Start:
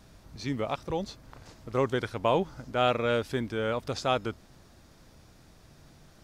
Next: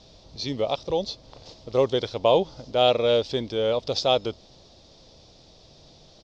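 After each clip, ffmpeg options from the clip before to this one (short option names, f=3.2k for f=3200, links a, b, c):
-af "firequalizer=gain_entry='entry(250,0);entry(520,9);entry(1500,-8);entry(3500,12);entry(5200,11);entry(11000,-27)':delay=0.05:min_phase=1"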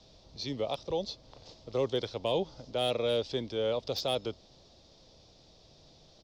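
-filter_complex "[0:a]acrossover=split=190|380|1800[a][b][c][d];[c]alimiter=limit=-20dB:level=0:latency=1:release=36[e];[d]volume=22.5dB,asoftclip=hard,volume=-22.5dB[f];[a][b][e][f]amix=inputs=4:normalize=0,volume=-6.5dB"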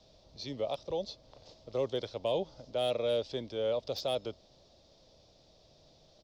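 -af "equalizer=f=600:t=o:w=0.42:g=6,volume=-4.5dB"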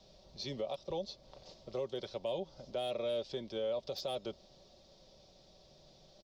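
-af "aecho=1:1:5.3:0.45,alimiter=level_in=4.5dB:limit=-24dB:level=0:latency=1:release=264,volume=-4.5dB"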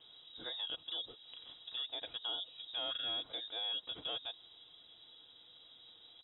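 -filter_complex "[0:a]lowpass=f=3.3k:t=q:w=0.5098,lowpass=f=3.3k:t=q:w=0.6013,lowpass=f=3.3k:t=q:w=0.9,lowpass=f=3.3k:t=q:w=2.563,afreqshift=-3900,acrossover=split=2500[a][b];[b]acompressor=threshold=-48dB:ratio=4:attack=1:release=60[c];[a][c]amix=inputs=2:normalize=0,volume=3.5dB"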